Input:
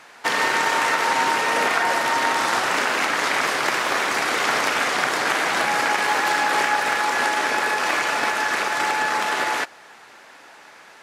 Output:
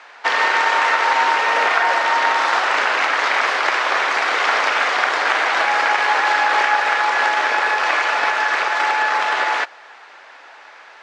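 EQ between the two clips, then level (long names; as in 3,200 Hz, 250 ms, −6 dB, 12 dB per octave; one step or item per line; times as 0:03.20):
high-pass filter 560 Hz 12 dB per octave
high-frequency loss of the air 140 metres
+5.5 dB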